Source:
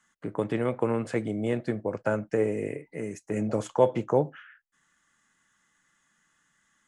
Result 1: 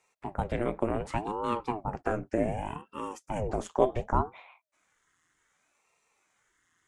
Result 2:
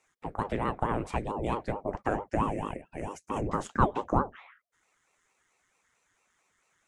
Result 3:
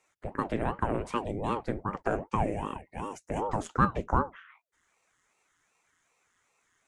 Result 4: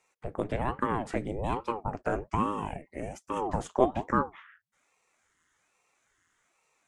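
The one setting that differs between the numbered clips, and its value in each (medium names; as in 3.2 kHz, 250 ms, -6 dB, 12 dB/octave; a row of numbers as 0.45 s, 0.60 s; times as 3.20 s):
ring modulator with a swept carrier, at: 0.67 Hz, 4.5 Hz, 2.6 Hz, 1.2 Hz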